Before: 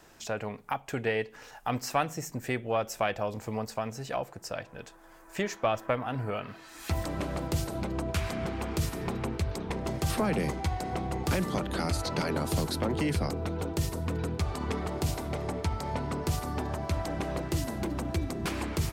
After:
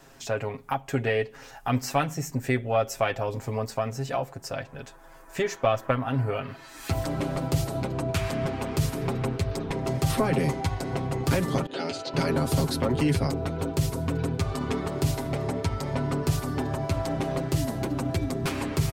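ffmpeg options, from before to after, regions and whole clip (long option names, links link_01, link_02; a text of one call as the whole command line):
ffmpeg -i in.wav -filter_complex "[0:a]asettb=1/sr,asplit=3[link_01][link_02][link_03];[link_01]atrim=end=11.664[link_04];[link_02]atrim=start=11.66:end=12.14,asetpts=PTS-STARTPTS,afade=type=in:duration=0.004:curve=qsin,afade=type=out:start_time=0.476:duration=0.004:curve=qsin,agate=range=-33dB:threshold=-30dB:ratio=3:release=100:detection=peak,highpass=310,equalizer=frequency=410:width_type=q:width=4:gain=3,equalizer=frequency=1100:width_type=q:width=4:gain=-9,equalizer=frequency=1900:width_type=q:width=4:gain=-4,equalizer=frequency=2900:width_type=q:width=4:gain=6,equalizer=frequency=5800:width_type=q:width=4:gain=-4,lowpass=frequency=6500:width=0.5412,lowpass=frequency=6500:width=1.3066[link_05];[link_03]atrim=start=12.136[link_06];[link_04][link_05]acrossfade=duration=0.004:curve1=hsin:curve2=qsin[link_07];[link_07][link_06]acrossfade=duration=0.004:curve1=qsin:curve2=hsin,lowshelf=frequency=410:gain=3.5,aecho=1:1:7.4:0.71,volume=1dB" out.wav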